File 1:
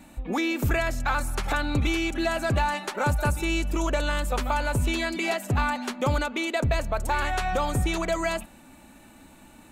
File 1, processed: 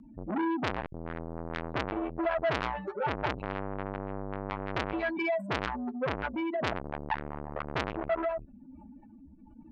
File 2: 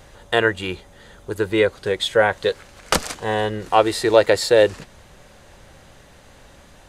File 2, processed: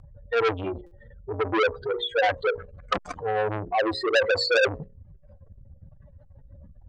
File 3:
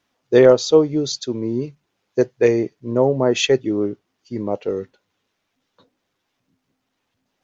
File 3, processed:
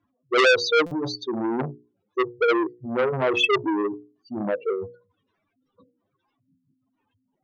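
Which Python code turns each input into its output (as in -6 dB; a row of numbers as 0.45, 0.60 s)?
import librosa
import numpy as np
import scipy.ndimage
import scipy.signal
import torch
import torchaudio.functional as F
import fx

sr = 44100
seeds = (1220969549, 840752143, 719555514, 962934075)

y = fx.spec_expand(x, sr, power=3.5)
y = fx.peak_eq(y, sr, hz=1100.0, db=11.0, octaves=0.67)
y = fx.rotary(y, sr, hz=1.1)
y = fx.peak_eq(y, sr, hz=99.0, db=8.0, octaves=1.7)
y = fx.hum_notches(y, sr, base_hz=60, count=9)
y = fx.buffer_glitch(y, sr, at_s=(0.86,), block=256, repeats=8)
y = fx.transformer_sat(y, sr, knee_hz=2300.0)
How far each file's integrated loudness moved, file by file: -7.0, -6.0, -4.5 LU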